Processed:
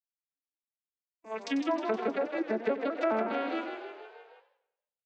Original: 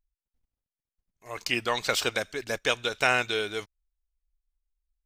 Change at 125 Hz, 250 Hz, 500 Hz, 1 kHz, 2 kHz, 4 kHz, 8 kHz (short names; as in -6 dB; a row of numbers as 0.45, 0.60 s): under -10 dB, +6.5 dB, +0.5 dB, -2.5 dB, -11.5 dB, -17.0 dB, under -20 dB